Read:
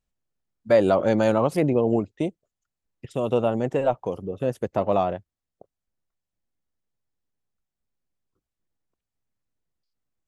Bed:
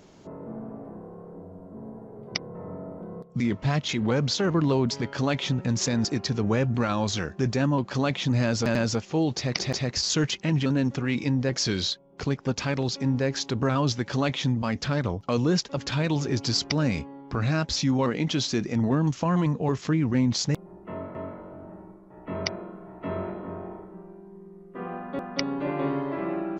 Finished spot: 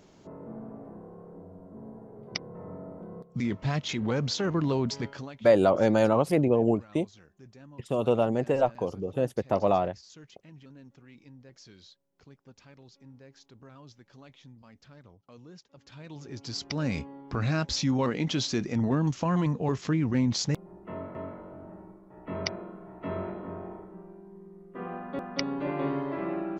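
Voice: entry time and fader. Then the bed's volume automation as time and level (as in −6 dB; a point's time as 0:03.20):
4.75 s, −2.0 dB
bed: 0:05.07 −4 dB
0:05.44 −26.5 dB
0:15.68 −26.5 dB
0:16.98 −2.5 dB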